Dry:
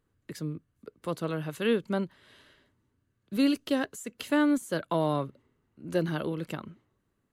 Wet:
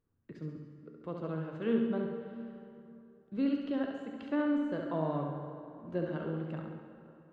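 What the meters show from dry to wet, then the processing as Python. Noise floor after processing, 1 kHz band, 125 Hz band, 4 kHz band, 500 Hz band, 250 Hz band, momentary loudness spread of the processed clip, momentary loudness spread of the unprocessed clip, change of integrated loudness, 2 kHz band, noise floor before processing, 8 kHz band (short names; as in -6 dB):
-63 dBFS, -6.5 dB, -4.0 dB, -14.5 dB, -5.0 dB, -4.0 dB, 20 LU, 14 LU, -5.0 dB, -9.5 dB, -77 dBFS, under -30 dB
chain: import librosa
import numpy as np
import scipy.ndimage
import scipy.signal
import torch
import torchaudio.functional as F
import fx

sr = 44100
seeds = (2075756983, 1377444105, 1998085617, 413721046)

y = fx.spacing_loss(x, sr, db_at_10k=37)
y = fx.comb_fb(y, sr, f0_hz=230.0, decay_s=1.0, harmonics='all', damping=0.0, mix_pct=70)
y = fx.echo_feedback(y, sr, ms=69, feedback_pct=52, wet_db=-5.5)
y = fx.rev_plate(y, sr, seeds[0], rt60_s=3.0, hf_ratio=0.65, predelay_ms=0, drr_db=5.5)
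y = y * 10.0 ** (4.0 / 20.0)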